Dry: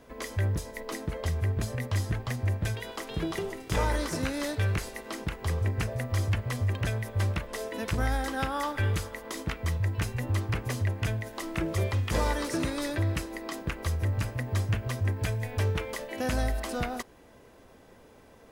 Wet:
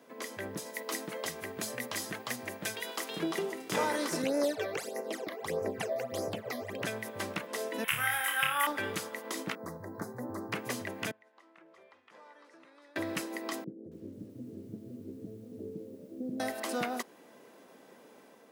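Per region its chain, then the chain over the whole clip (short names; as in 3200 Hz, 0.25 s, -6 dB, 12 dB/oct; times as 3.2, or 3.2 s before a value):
0.66–3.19 tilt +1.5 dB/oct + hard clip -21 dBFS
4.22–6.82 band shelf 560 Hz +8 dB 1.1 oct + phaser stages 12, 1.6 Hz, lowest notch 140–3500 Hz
7.84–8.67 EQ curve 140 Hz 0 dB, 220 Hz -22 dB, 320 Hz -19 dB, 640 Hz -10 dB, 1200 Hz +1 dB, 3000 Hz +10 dB, 4300 Hz -12 dB, 6500 Hz -6 dB, 11000 Hz +11 dB + flutter echo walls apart 4.8 m, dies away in 0.33 s
9.55–10.52 Butterworth band-stop 2800 Hz, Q 0.76 + bell 7700 Hz -11 dB 2.7 oct
11.11–12.96 LPF 1200 Hz + differentiator + compressor 1.5:1, threshold -56 dBFS
13.64–16.4 inverse Chebyshev low-pass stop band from 1000 Hz, stop band 50 dB + low shelf 120 Hz -8 dB + lo-fi delay 0.274 s, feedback 55%, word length 10-bit, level -10 dB
whole clip: HPF 190 Hz 24 dB/oct; high shelf 12000 Hz +4 dB; AGC gain up to 3 dB; gain -3.5 dB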